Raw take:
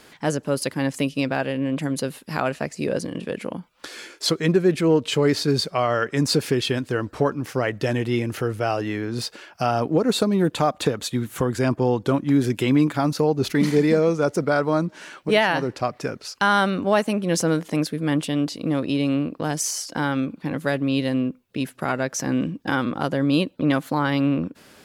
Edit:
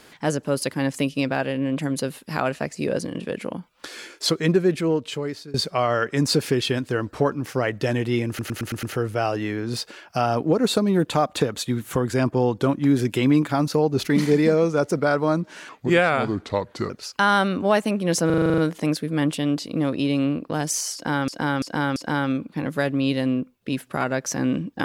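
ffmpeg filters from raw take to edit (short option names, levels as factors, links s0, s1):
-filter_complex "[0:a]asplit=20[s0][s1][s2][s3][s4][s5][s6][s7][s8][s9][s10][s11][s12][s13][s14][s15][s16][s17][s18][s19];[s0]atrim=end=5.54,asetpts=PTS-STARTPTS,afade=t=out:st=4.52:d=1.02:silence=0.0668344[s20];[s1]atrim=start=5.54:end=8.392,asetpts=PTS-STARTPTS,afade=t=in:d=0.004:c=hsin:silence=0.0668344[s21];[s2]atrim=start=8.278:end=8.392[s22];[s3]atrim=start=8.278:end=8.392[s23];[s4]atrim=start=8.278:end=8.392[s24];[s5]atrim=start=8.278:end=8.392[s25];[s6]atrim=start=8.278:end=15.144[s26];[s7]atrim=start=15.14:end=16.12,asetpts=PTS-STARTPTS,asetrate=35721,aresample=44100[s27];[s8]atrim=start=16.116:end=17.522[s28];[s9]atrim=start=17.478:end=17.522[s29];[s10]atrim=start=17.478:end=17.522[s30];[s11]atrim=start=17.478:end=17.522[s31];[s12]atrim=start=17.478:end=17.522[s32];[s13]atrim=start=17.478:end=17.522[s33];[s14]atrim=start=17.478:end=17.522[s34];[s15]atrim=start=17.478:end=17.522[s35];[s16]atrim=start=17.478:end=20.182[s36];[s17]atrim=start=19.838:end=20.182[s37];[s18]atrim=start=19.838:end=20.182[s38];[s19]atrim=start=19.838[s39];[s20][s21]concat=n=2:v=0:a=1[s40];[s40][s22]acrossfade=d=0.004:c1=hsin:c2=hsin[s41];[s41][s23]acrossfade=d=0.004:c1=hsin:c2=hsin[s42];[s42][s24]acrossfade=d=0.004:c1=hsin:c2=hsin[s43];[s43][s25]acrossfade=d=0.004:c1=hsin:c2=hsin[s44];[s44][s26]acrossfade=d=0.004:c1=hsin:c2=hsin[s45];[s45][s27]acrossfade=d=0.004:c1=hsin:c2=hsin[s46];[s46][s28]acrossfade=d=0.004:c1=hsin:c2=hsin[s47];[s47][s29]acrossfade=d=0.004:c1=hsin:c2=hsin[s48];[s48][s30]acrossfade=d=0.004:c1=hsin:c2=hsin[s49];[s49][s31]acrossfade=d=0.004:c1=hsin:c2=hsin[s50];[s50][s32]acrossfade=d=0.004:c1=hsin:c2=hsin[s51];[s51][s33]acrossfade=d=0.004:c1=hsin:c2=hsin[s52];[s52][s34]acrossfade=d=0.004:c1=hsin:c2=hsin[s53];[s53][s35]acrossfade=d=0.004:c1=hsin:c2=hsin[s54];[s54][s36]acrossfade=d=0.004:c1=hsin:c2=hsin[s55];[s55][s37]acrossfade=d=0.004:c1=hsin:c2=hsin[s56];[s56][s38]acrossfade=d=0.004:c1=hsin:c2=hsin[s57];[s57][s39]acrossfade=d=0.004:c1=hsin:c2=hsin"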